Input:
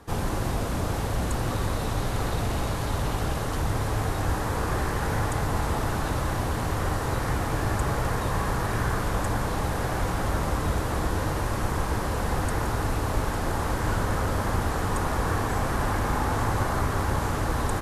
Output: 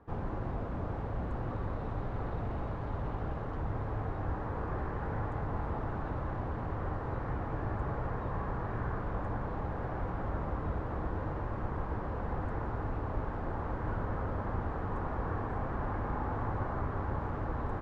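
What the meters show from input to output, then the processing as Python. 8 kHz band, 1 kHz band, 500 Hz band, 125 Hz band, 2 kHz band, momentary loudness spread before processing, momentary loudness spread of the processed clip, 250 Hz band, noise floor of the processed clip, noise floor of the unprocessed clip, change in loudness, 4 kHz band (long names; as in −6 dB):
below −35 dB, −9.5 dB, −8.5 dB, −8.5 dB, −13.5 dB, 2 LU, 2 LU, −8.5 dB, −38 dBFS, −29 dBFS, −9.5 dB, below −20 dB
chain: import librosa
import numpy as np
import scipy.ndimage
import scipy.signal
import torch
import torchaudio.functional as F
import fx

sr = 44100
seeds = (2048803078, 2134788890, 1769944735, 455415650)

y = scipy.signal.sosfilt(scipy.signal.butter(2, 1400.0, 'lowpass', fs=sr, output='sos'), x)
y = y * librosa.db_to_amplitude(-8.5)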